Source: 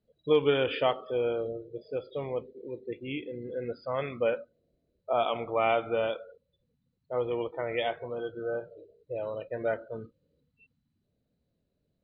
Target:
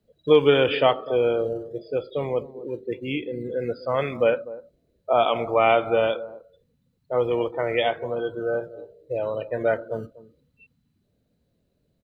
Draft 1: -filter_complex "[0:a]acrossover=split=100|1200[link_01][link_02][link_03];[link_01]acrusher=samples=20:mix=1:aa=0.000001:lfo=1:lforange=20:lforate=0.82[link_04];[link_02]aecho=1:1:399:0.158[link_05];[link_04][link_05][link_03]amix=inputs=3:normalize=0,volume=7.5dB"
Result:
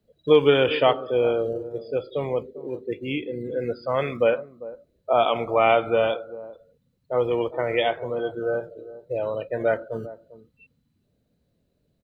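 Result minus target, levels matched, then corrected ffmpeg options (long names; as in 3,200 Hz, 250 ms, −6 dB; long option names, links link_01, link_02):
echo 150 ms late
-filter_complex "[0:a]acrossover=split=100|1200[link_01][link_02][link_03];[link_01]acrusher=samples=20:mix=1:aa=0.000001:lfo=1:lforange=20:lforate=0.82[link_04];[link_02]aecho=1:1:249:0.158[link_05];[link_04][link_05][link_03]amix=inputs=3:normalize=0,volume=7.5dB"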